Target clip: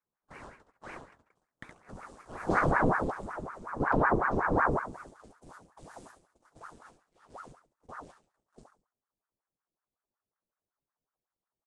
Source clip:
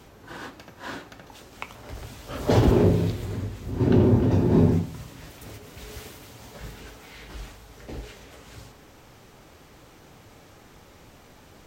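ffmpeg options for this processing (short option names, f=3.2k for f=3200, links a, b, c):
-af "agate=range=-35dB:threshold=-42dB:ratio=16:detection=peak,firequalizer=gain_entry='entry(360,0);entry(1800,-16);entry(8000,-2)':delay=0.05:min_phase=1,aecho=1:1:69|138|207|276:0.376|0.12|0.0385|0.0123,aresample=22050,aresample=44100,asetnsamples=n=441:p=0,asendcmd='5.09 equalizer g -2.5',equalizer=f=1k:w=1.7:g=9.5,aeval=exprs='val(0)*sin(2*PI*720*n/s+720*0.9/5.4*sin(2*PI*5.4*n/s))':c=same,volume=-5.5dB"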